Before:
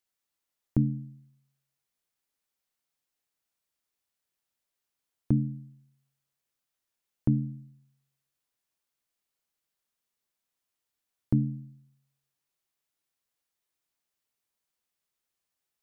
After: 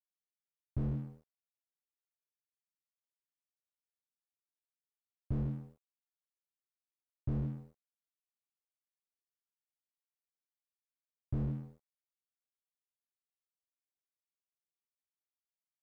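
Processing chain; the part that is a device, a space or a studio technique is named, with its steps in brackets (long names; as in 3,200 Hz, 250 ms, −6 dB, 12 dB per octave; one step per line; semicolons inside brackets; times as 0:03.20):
early transistor amplifier (dead-zone distortion −53.5 dBFS; slew-rate limiting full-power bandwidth 3.6 Hz)
level +1 dB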